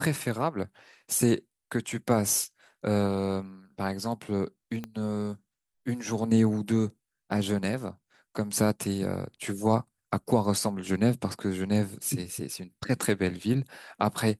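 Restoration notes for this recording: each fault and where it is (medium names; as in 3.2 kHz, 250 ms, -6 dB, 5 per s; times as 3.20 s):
4.84 s: pop -22 dBFS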